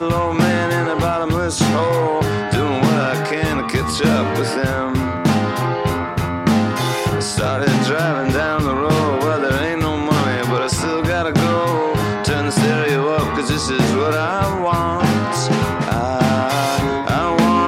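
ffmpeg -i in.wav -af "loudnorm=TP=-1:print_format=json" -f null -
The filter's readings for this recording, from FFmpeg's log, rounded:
"input_i" : "-17.7",
"input_tp" : "-1.3",
"input_lra" : "1.0",
"input_thresh" : "-27.7",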